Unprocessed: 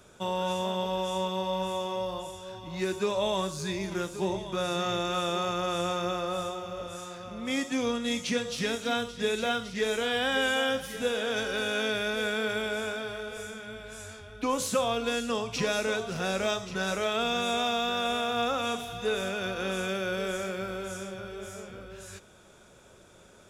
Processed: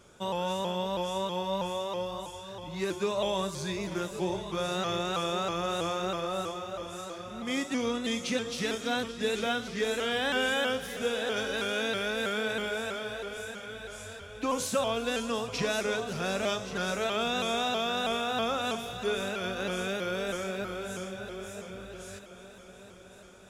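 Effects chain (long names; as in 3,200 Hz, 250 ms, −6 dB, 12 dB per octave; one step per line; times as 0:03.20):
echo machine with several playback heads 368 ms, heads all three, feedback 62%, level −20 dB
pitch modulation by a square or saw wave saw up 3.1 Hz, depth 100 cents
level −1.5 dB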